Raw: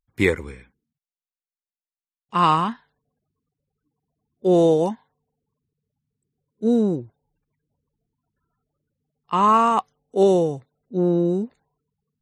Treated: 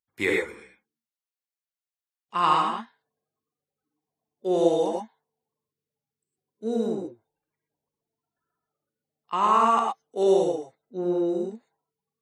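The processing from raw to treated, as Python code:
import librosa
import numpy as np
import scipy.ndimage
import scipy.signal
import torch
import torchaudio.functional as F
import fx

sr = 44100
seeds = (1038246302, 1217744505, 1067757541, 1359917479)

y = fx.highpass(x, sr, hz=520.0, slope=6)
y = fx.rev_gated(y, sr, seeds[0], gate_ms=140, shape='rising', drr_db=0.0)
y = F.gain(torch.from_numpy(y), -4.5).numpy()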